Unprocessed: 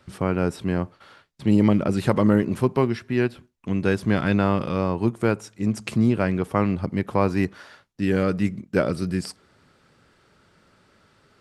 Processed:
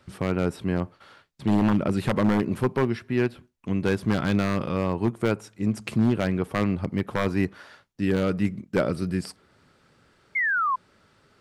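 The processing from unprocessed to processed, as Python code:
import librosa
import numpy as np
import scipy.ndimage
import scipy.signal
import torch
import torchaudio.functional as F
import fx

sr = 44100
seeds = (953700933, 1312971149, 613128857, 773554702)

y = fx.dynamic_eq(x, sr, hz=6400.0, q=1.1, threshold_db=-53.0, ratio=4.0, max_db=-4)
y = 10.0 ** (-11.5 / 20.0) * (np.abs((y / 10.0 ** (-11.5 / 20.0) + 3.0) % 4.0 - 2.0) - 1.0)
y = fx.spec_paint(y, sr, seeds[0], shape='fall', start_s=10.35, length_s=0.41, low_hz=1000.0, high_hz=2200.0, level_db=-22.0)
y = y * 10.0 ** (-1.5 / 20.0)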